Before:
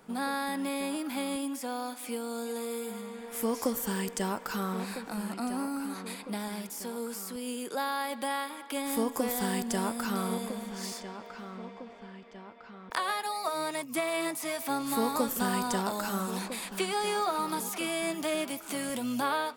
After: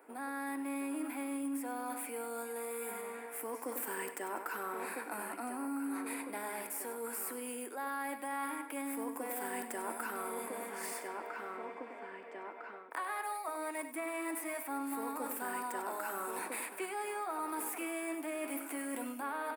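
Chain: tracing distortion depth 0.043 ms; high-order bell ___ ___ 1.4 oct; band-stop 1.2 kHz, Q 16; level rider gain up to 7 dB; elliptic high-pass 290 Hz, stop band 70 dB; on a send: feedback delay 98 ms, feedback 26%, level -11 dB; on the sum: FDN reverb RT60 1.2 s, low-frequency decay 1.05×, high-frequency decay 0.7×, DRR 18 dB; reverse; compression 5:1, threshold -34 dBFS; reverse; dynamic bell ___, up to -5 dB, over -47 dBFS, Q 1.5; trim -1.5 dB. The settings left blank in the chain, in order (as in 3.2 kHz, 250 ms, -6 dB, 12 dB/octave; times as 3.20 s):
4.6 kHz, -14.5 dB, 540 Hz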